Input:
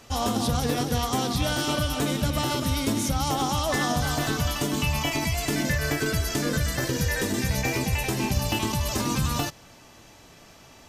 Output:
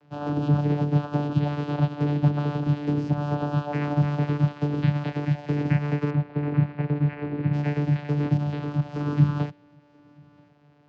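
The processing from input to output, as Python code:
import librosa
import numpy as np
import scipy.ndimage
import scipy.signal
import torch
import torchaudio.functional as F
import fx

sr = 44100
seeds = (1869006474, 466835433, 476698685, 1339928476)

y = fx.cvsd(x, sr, bps=16000, at=(6.1, 7.53))
y = fx.clip_hard(y, sr, threshold_db=-23.0, at=(8.37, 8.95))
y = fx.vocoder(y, sr, bands=8, carrier='saw', carrier_hz=146.0)
y = fx.air_absorb(y, sr, metres=200.0)
y = y + 10.0 ** (-22.5 / 20.0) * np.pad(y, (int(983 * sr / 1000.0), 0))[:len(y)]
y = fx.upward_expand(y, sr, threshold_db=-39.0, expansion=1.5)
y = y * 10.0 ** (7.0 / 20.0)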